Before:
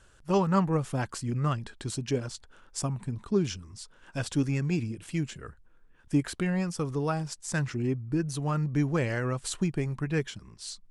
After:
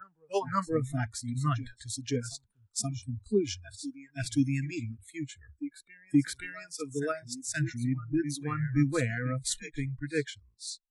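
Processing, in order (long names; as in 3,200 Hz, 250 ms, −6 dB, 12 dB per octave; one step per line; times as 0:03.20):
backwards echo 525 ms −8.5 dB
noise reduction from a noise print of the clip's start 28 dB
multiband upward and downward expander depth 40%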